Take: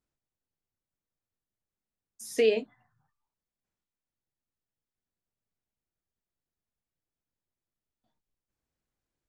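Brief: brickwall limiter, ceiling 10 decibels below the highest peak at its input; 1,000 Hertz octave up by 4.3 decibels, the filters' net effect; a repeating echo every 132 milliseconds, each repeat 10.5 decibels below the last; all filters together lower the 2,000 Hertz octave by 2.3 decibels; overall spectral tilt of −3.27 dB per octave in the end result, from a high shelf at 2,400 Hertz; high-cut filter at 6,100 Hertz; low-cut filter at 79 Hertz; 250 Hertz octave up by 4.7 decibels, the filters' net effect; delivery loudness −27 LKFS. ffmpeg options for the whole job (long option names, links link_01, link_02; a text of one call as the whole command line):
ffmpeg -i in.wav -af "highpass=79,lowpass=6100,equalizer=frequency=250:width_type=o:gain=5,equalizer=frequency=1000:width_type=o:gain=7.5,equalizer=frequency=2000:width_type=o:gain=-8.5,highshelf=frequency=2400:gain=6,alimiter=limit=-21dB:level=0:latency=1,aecho=1:1:132|264|396:0.299|0.0896|0.0269,volume=5.5dB" out.wav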